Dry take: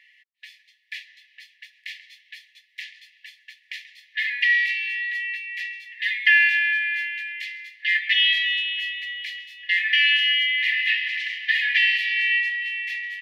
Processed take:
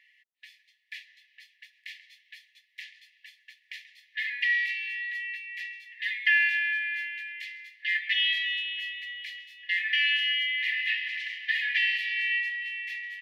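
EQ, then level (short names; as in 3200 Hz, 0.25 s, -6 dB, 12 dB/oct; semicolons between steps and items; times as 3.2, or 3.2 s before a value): bell 3800 Hz -2.5 dB 2.9 oct; -4.5 dB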